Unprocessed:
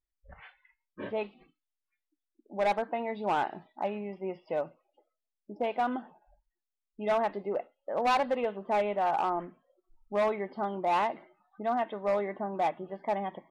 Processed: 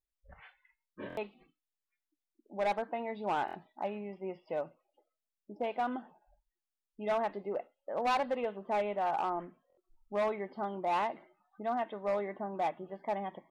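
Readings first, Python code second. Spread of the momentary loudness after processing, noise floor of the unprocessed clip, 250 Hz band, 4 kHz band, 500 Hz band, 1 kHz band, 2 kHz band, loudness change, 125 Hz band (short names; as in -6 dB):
10 LU, under -85 dBFS, -4.0 dB, -4.0 dB, -4.0 dB, -4.0 dB, -4.0 dB, -4.0 dB, -4.0 dB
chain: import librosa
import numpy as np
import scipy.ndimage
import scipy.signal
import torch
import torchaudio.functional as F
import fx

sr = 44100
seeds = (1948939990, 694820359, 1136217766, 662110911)

y = fx.buffer_glitch(x, sr, at_s=(1.08, 3.46, 6.69, 9.68), block=1024, repeats=3)
y = y * librosa.db_to_amplitude(-4.0)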